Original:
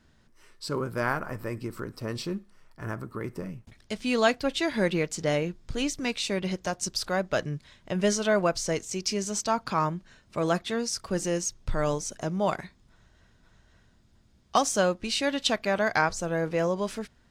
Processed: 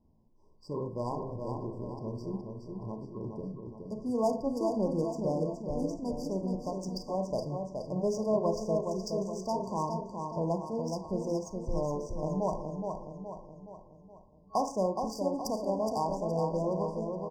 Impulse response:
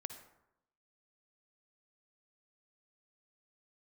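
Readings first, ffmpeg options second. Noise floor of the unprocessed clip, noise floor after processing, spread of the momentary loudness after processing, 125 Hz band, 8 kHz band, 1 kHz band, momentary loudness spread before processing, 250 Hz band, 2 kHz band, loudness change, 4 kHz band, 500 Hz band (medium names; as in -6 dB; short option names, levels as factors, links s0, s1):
-62 dBFS, -58 dBFS, 11 LU, -3.0 dB, -15.5 dB, -4.5 dB, 13 LU, -3.0 dB, under -40 dB, -5.0 dB, -17.0 dB, -3.0 dB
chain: -filter_complex "[0:a]aecho=1:1:420|840|1260|1680|2100|2520:0.562|0.281|0.141|0.0703|0.0351|0.0176[s0];[1:a]atrim=start_sample=2205,asetrate=79380,aresample=44100[s1];[s0][s1]afir=irnorm=-1:irlink=0,adynamicsmooth=sensitivity=5:basefreq=2200,afftfilt=real='re*(1-between(b*sr/4096,1100,4600))':imag='im*(1-between(b*sr/4096,1100,4600))':win_size=4096:overlap=0.75,volume=1.5"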